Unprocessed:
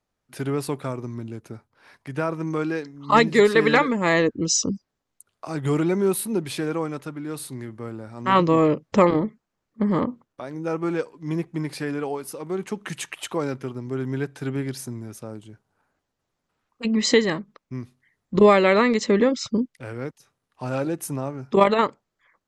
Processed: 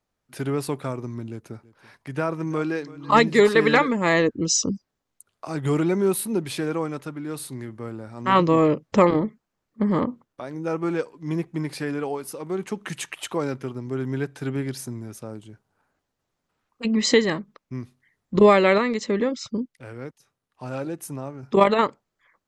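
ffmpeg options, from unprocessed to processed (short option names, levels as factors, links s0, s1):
-filter_complex "[0:a]asettb=1/sr,asplit=3[s0][s1][s2];[s0]atrim=end=1.304[s3];[s1]atrim=start=1.3:end=3.49,asetpts=PTS-STARTPTS,afade=t=in:d=0.004:c=qsin,afade=t=out:st=2.186:d=0.004:c=qsin,aecho=1:1:333:0.106,atrim=end_sample=96579[s4];[s2]atrim=start=3.486[s5];[s3][s4]acrossfade=d=0.004:c1=hsin:c2=qsin[s6];[s6][s5]acrossfade=d=0.004:c1=qsin:c2=hsin,asplit=3[s7][s8][s9];[s7]atrim=end=18.782[s10];[s8]atrim=start=18.778:end=21.432,asetpts=PTS-STARTPTS,volume=0.596[s11];[s9]atrim=start=21.428[s12];[s10][s11]acrossfade=d=0.004:c1=hsin:c2=hsin[s13];[s13][s12]acrossfade=d=0.004:c1=hsin:c2=hsin"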